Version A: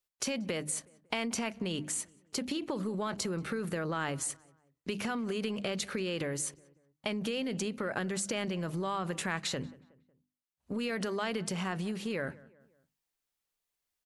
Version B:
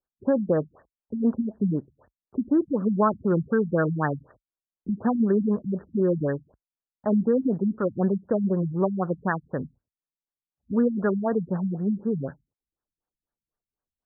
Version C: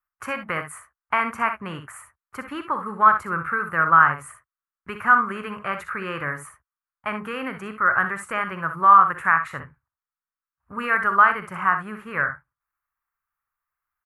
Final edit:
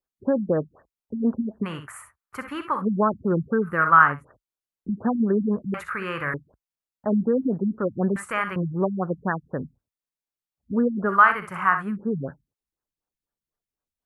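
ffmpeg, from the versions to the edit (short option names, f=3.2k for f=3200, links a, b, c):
-filter_complex "[2:a]asplit=5[a][b][c][d][e];[1:a]asplit=6[f][g][h][i][j][k];[f]atrim=end=1.66[l];[a]atrim=start=1.62:end=2.83[m];[g]atrim=start=2.79:end=3.85[n];[b]atrim=start=3.61:end=4.25[o];[h]atrim=start=4.01:end=5.742[p];[c]atrim=start=5.738:end=6.342[q];[i]atrim=start=6.338:end=8.162[r];[d]atrim=start=8.158:end=8.562[s];[j]atrim=start=8.558:end=11.2[t];[e]atrim=start=11.04:end=11.97[u];[k]atrim=start=11.81[v];[l][m]acrossfade=d=0.04:c1=tri:c2=tri[w];[w][n]acrossfade=d=0.04:c1=tri:c2=tri[x];[x][o]acrossfade=d=0.24:c1=tri:c2=tri[y];[y][p]acrossfade=d=0.24:c1=tri:c2=tri[z];[z][q]acrossfade=d=0.004:c1=hsin:c2=hsin[aa];[aa][r]acrossfade=d=0.004:c1=hsin:c2=hsin[ab];[ab][s]acrossfade=d=0.004:c1=hsin:c2=hsin[ac];[ac][t]acrossfade=d=0.004:c1=hsin:c2=hsin[ad];[ad][u]acrossfade=d=0.16:c1=tri:c2=tri[ae];[ae][v]acrossfade=d=0.16:c1=tri:c2=tri"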